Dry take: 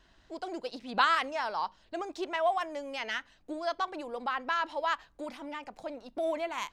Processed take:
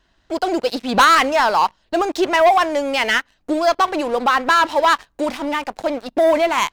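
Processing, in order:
leveller curve on the samples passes 3
level +7 dB

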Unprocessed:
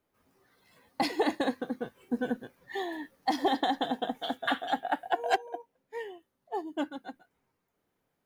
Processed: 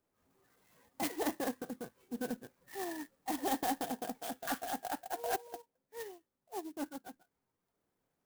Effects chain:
transient designer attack −9 dB, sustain −5 dB
converter with an unsteady clock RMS 0.07 ms
level −3 dB

